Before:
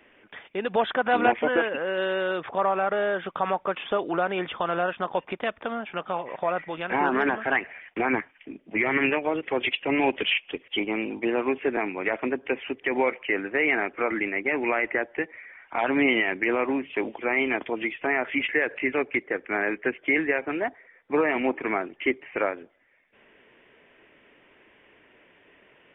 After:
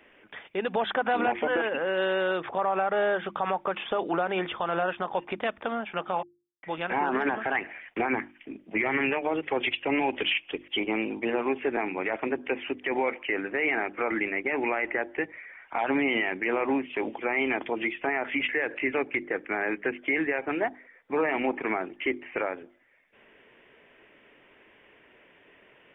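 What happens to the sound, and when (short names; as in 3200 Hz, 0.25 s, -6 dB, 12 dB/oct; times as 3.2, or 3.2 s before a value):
6.23–6.63 mute
whole clip: notches 50/100/150/200/250/300/350 Hz; dynamic EQ 820 Hz, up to +5 dB, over -44 dBFS, Q 6.8; limiter -17 dBFS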